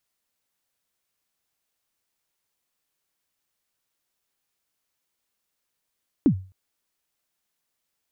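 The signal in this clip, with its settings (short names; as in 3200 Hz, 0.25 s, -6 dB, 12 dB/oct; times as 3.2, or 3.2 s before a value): kick drum length 0.26 s, from 330 Hz, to 94 Hz, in 85 ms, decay 0.36 s, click off, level -10.5 dB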